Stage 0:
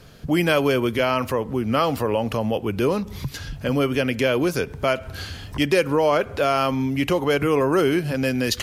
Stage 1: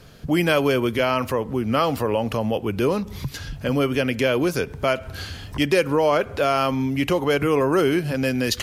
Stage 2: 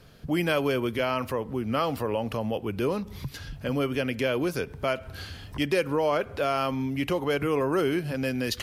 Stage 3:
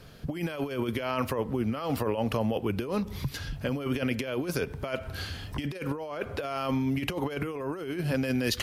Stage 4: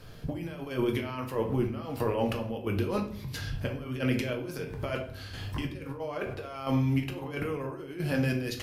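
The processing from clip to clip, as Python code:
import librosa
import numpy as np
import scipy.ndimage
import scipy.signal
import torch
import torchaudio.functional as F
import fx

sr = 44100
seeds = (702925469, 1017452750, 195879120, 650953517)

y1 = x
y2 = fx.peak_eq(y1, sr, hz=6800.0, db=-3.5, octaves=0.51)
y2 = y2 * librosa.db_to_amplitude(-6.0)
y3 = fx.over_compress(y2, sr, threshold_db=-29.0, ratio=-0.5)
y4 = fx.dmg_crackle(y3, sr, seeds[0], per_s=13.0, level_db=-49.0)
y4 = fx.chopper(y4, sr, hz=1.5, depth_pct=60, duty_pct=50)
y4 = fx.room_shoebox(y4, sr, seeds[1], volume_m3=59.0, walls='mixed', distance_m=0.52)
y4 = y4 * librosa.db_to_amplitude(-1.5)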